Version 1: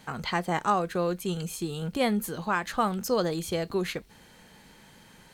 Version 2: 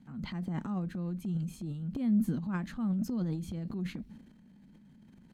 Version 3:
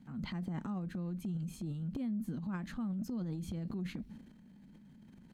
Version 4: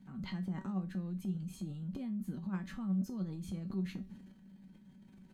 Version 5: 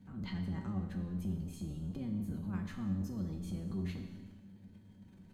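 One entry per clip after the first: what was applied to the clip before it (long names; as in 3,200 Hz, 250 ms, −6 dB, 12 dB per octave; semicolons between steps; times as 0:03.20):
drawn EQ curve 110 Hz 0 dB, 230 Hz +12 dB, 430 Hz −13 dB; transient designer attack −4 dB, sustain +11 dB; high-shelf EQ 4,700 Hz −7.5 dB; level −8.5 dB
downward compressor 6 to 1, threshold −35 dBFS, peak gain reduction 11 dB
tuned comb filter 190 Hz, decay 0.25 s, harmonics all, mix 80%; level +7.5 dB
sub-octave generator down 1 octave, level −4 dB; soft clipping −26 dBFS, distortion −21 dB; on a send at −5.5 dB: convolution reverb RT60 1.2 s, pre-delay 30 ms; on the sum: level −1 dB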